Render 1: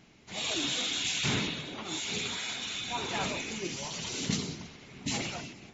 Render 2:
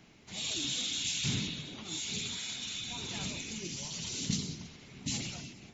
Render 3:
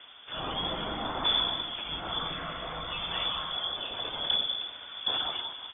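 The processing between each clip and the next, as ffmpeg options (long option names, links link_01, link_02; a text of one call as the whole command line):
ffmpeg -i in.wav -filter_complex "[0:a]acrossover=split=260|3000[link_01][link_02][link_03];[link_02]acompressor=threshold=-60dB:ratio=2[link_04];[link_01][link_04][link_03]amix=inputs=3:normalize=0" out.wav
ffmpeg -i in.wav -af "aeval=exprs='0.112*sin(PI/2*1.78*val(0)/0.112)':channel_layout=same,aecho=1:1:196:0.2,lowpass=frequency=3100:width_type=q:width=0.5098,lowpass=frequency=3100:width_type=q:width=0.6013,lowpass=frequency=3100:width_type=q:width=0.9,lowpass=frequency=3100:width_type=q:width=2.563,afreqshift=-3600" out.wav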